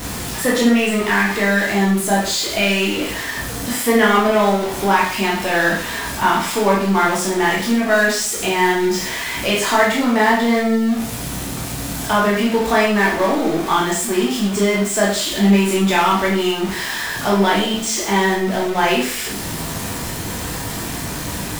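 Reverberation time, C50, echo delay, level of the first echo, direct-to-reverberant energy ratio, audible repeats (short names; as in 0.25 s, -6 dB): 0.55 s, 4.0 dB, none, none, -4.5 dB, none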